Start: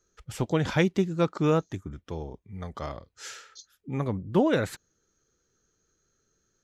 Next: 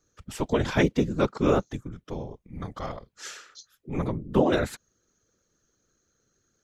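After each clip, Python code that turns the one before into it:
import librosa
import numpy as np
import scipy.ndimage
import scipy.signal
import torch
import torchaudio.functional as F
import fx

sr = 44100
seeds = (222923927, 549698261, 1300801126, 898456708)

y = fx.whisperise(x, sr, seeds[0])
y = y * librosa.db_to_amplitude(1.0)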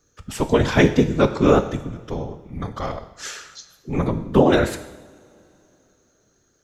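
y = fx.rev_double_slope(x, sr, seeds[1], early_s=0.89, late_s=3.5, knee_db=-21, drr_db=8.5)
y = y * librosa.db_to_amplitude(6.5)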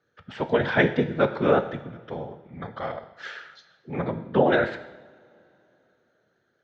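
y = fx.cabinet(x, sr, low_hz=180.0, low_slope=12, high_hz=3300.0, hz=(200.0, 290.0, 410.0, 1100.0, 1600.0, 2600.0), db=(-4, -9, -4, -7, 4, -6))
y = y * librosa.db_to_amplitude(-1.0)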